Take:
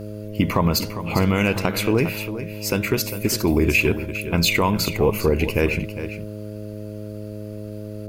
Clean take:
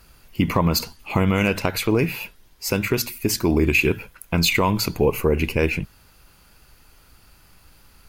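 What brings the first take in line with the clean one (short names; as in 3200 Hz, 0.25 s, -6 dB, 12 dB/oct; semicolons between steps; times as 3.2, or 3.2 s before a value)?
de-hum 105.2 Hz, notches 6; inverse comb 0.403 s -11.5 dB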